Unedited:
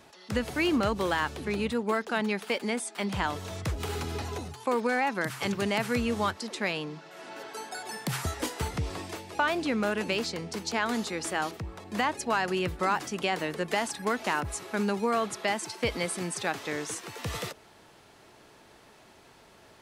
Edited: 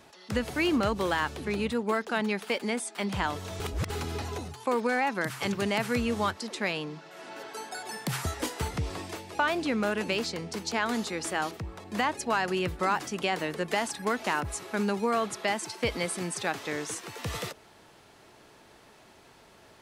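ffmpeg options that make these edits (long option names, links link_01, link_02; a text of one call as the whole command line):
ffmpeg -i in.wav -filter_complex "[0:a]asplit=3[link_01][link_02][link_03];[link_01]atrim=end=3.602[link_04];[link_02]atrim=start=3.598:end=3.902,asetpts=PTS-STARTPTS,areverse[link_05];[link_03]atrim=start=3.898[link_06];[link_04][link_05]acrossfade=duration=0.004:curve1=hsin:curve2=hsin[link_07];[link_07][link_06]acrossfade=duration=0.004:curve1=hsin:curve2=hsin" out.wav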